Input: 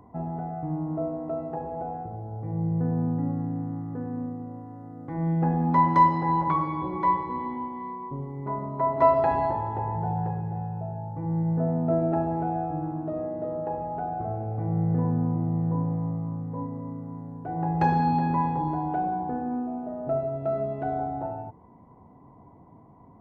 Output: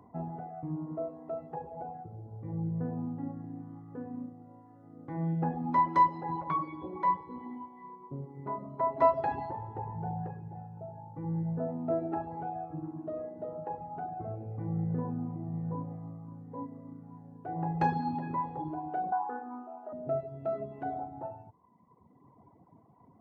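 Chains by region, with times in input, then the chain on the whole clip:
19.12–19.93 HPF 370 Hz + band shelf 1100 Hz +10.5 dB 1.2 oct
whole clip: reverb removal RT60 1.7 s; HPF 90 Hz; gain -4 dB

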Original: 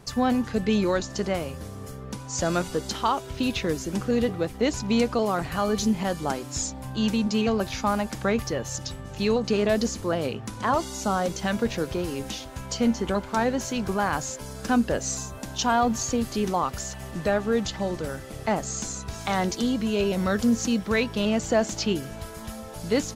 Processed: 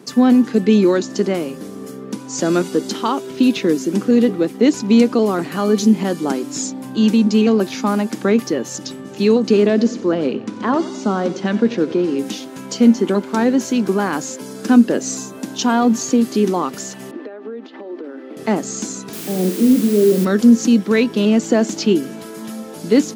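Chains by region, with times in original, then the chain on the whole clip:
9.69–12.19 air absorption 110 m + feedback echo 90 ms, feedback 43%, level -16 dB
17.11–18.37 elliptic high-pass 250 Hz + compressor 10:1, threshold -35 dBFS + air absorption 360 m
19.13–20.25 steep low-pass 630 Hz + flutter echo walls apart 8.2 m, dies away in 0.29 s + requantised 6-bit, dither triangular
whole clip: HPF 210 Hz 24 dB/oct; resonant low shelf 470 Hz +7.5 dB, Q 1.5; gain +4.5 dB

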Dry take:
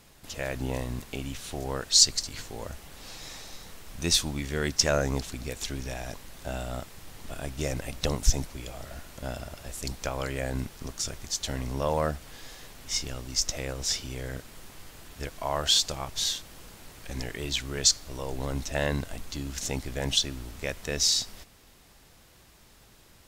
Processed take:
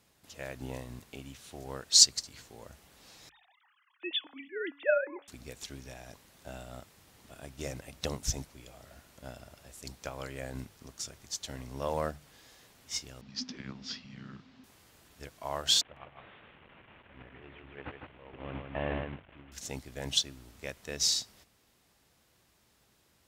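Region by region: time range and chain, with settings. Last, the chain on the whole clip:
3.29–5.28 sine-wave speech + low shelf 440 Hz -6 dB + de-hum 283.5 Hz, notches 12
13.21–14.64 inverse Chebyshev low-pass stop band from 11000 Hz, stop band 50 dB + frequency shift -270 Hz
15.81–19.52 delta modulation 16 kbps, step -30 dBFS + gate -32 dBFS, range -9 dB + echo 0.155 s -3.5 dB
whole clip: HPF 64 Hz; notches 50/100/150 Hz; upward expander 1.5:1, over -37 dBFS

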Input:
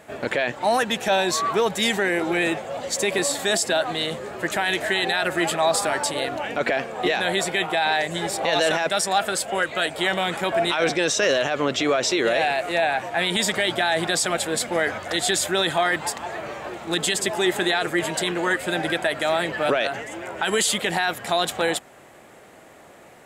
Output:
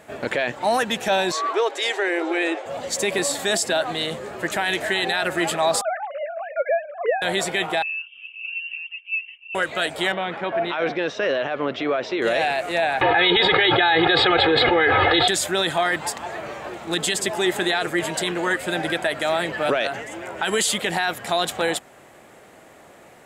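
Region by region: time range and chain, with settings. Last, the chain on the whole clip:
1.32–2.66 steep high-pass 280 Hz 96 dB/oct + air absorption 65 m
5.81–7.22 sine-wave speech + LPF 1600 Hz
7.82–9.55 formant sharpening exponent 1.5 + vocal tract filter a + inverted band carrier 3400 Hz
10.12–12.22 HPF 190 Hz 6 dB/oct + air absorption 320 m
13.01–15.28 elliptic low-pass 3900 Hz + comb 2.4 ms, depth 90% + fast leveller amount 100%
whole clip: dry

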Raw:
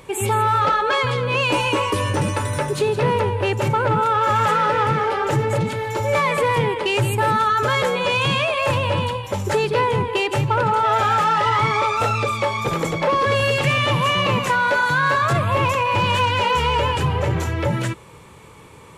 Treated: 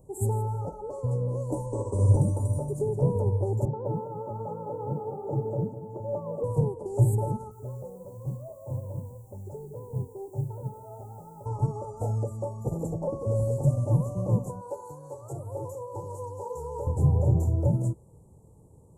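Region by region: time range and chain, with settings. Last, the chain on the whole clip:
1.66–2.16 steep low-pass 9500 Hz 48 dB/oct + notch 300 Hz, Q 7.9 + flutter echo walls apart 10.6 m, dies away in 0.79 s
3.65–6.44 BPF 170–2300 Hz + lo-fi delay 0.203 s, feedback 35%, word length 8-bit, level -9.5 dB
7.51–11.46 air absorption 67 m + resonator 130 Hz, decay 0.26 s, mix 70% + requantised 8-bit, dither triangular
14.61–16.87 HPF 510 Hz 6 dB/oct + comb 2.3 ms, depth 88%
whole clip: elliptic band-stop 760–7500 Hz, stop band 50 dB; low shelf 210 Hz +11 dB; upward expander 1.5:1, over -25 dBFS; gain -6 dB

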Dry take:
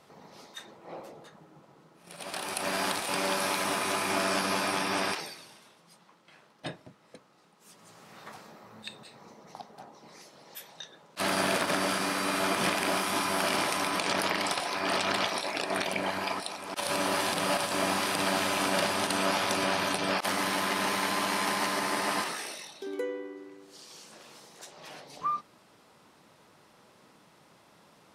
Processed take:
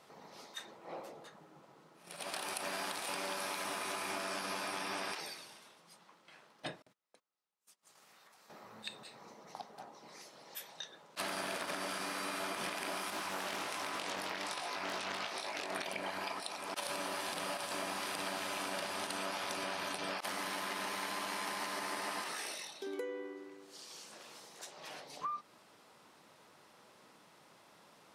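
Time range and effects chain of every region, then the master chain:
6.82–8.5 gate -54 dBFS, range -31 dB + tilt +2 dB/oct + compressor 16:1, threshold -57 dBFS
13.1–15.75 chorus 1.3 Hz, delay 18.5 ms, depth 3.2 ms + Doppler distortion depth 0.36 ms
whole clip: low shelf 240 Hz -8 dB; compressor 6:1, threshold -35 dBFS; gain -1.5 dB

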